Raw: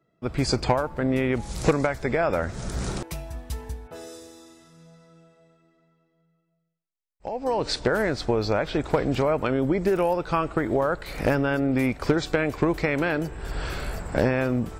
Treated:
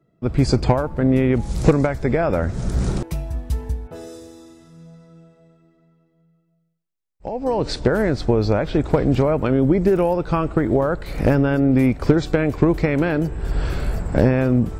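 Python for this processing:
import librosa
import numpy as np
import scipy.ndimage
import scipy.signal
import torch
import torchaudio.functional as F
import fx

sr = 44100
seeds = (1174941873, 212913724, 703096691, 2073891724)

y = fx.low_shelf(x, sr, hz=480.0, db=11.0)
y = y * 10.0 ** (-1.0 / 20.0)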